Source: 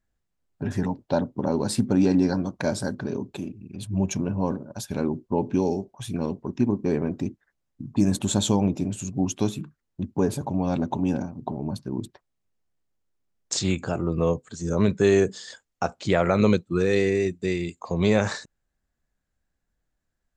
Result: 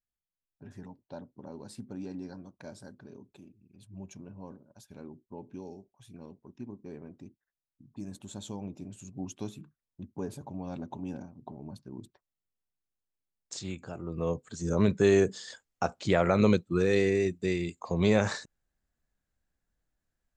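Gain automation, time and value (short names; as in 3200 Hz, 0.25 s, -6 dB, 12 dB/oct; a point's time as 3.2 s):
8.26 s -20 dB
9.2 s -13.5 dB
13.99 s -13.5 dB
14.5 s -3.5 dB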